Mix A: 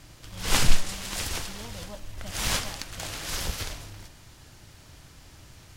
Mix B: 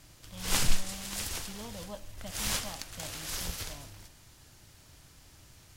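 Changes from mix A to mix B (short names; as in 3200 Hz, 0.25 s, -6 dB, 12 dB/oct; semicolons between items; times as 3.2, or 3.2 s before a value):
background -7.0 dB; master: add high shelf 6200 Hz +7 dB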